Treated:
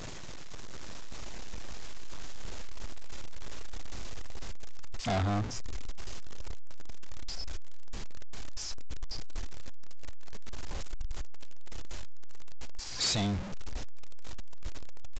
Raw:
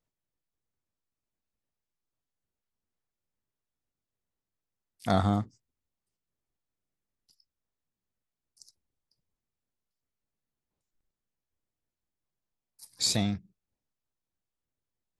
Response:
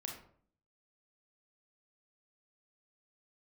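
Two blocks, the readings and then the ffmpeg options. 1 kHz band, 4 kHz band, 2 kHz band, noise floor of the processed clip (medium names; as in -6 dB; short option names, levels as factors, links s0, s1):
-3.0 dB, 0.0 dB, +4.0 dB, -37 dBFS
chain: -af "aeval=exprs='val(0)+0.5*0.0178*sgn(val(0))':c=same,asubboost=boost=5.5:cutoff=59,aresample=16000,asoftclip=type=hard:threshold=0.0355,aresample=44100,volume=1.26"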